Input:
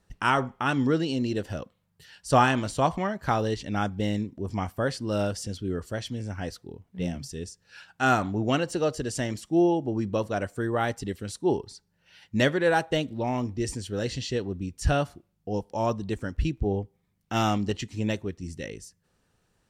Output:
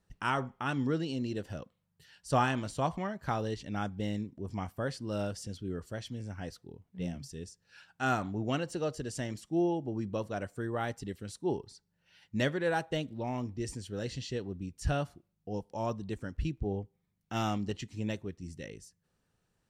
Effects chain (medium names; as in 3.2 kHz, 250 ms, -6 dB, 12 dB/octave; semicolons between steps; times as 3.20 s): peaking EQ 150 Hz +3 dB 0.91 oct; trim -8 dB